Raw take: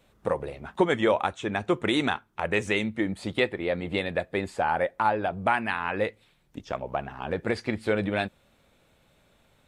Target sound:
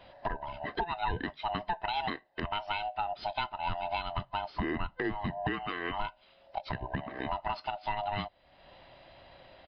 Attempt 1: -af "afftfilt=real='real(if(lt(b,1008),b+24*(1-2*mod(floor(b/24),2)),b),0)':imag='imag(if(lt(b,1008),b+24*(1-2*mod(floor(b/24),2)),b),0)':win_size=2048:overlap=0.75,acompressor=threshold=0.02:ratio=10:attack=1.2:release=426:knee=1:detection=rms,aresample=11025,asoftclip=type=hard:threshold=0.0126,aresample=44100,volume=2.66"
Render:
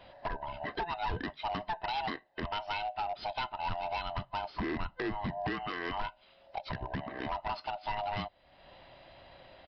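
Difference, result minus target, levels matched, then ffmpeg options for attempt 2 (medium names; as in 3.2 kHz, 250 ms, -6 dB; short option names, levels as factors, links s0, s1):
hard clipper: distortion +32 dB
-af "afftfilt=real='real(if(lt(b,1008),b+24*(1-2*mod(floor(b/24),2)),b),0)':imag='imag(if(lt(b,1008),b+24*(1-2*mod(floor(b/24),2)),b),0)':win_size=2048:overlap=0.75,acompressor=threshold=0.02:ratio=10:attack=1.2:release=426:knee=1:detection=rms,aresample=11025,asoftclip=type=hard:threshold=0.0355,aresample=44100,volume=2.66"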